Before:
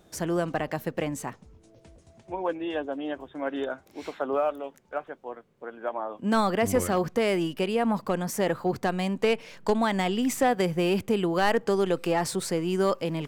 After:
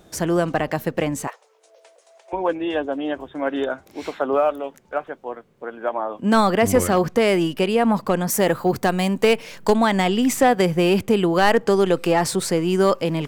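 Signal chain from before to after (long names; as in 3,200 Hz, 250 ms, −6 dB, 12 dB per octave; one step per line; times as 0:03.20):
0:01.27–0:02.33: Butterworth high-pass 460 Hz 48 dB per octave
0:08.30–0:09.76: high-shelf EQ 9,700 Hz +11 dB
level +7 dB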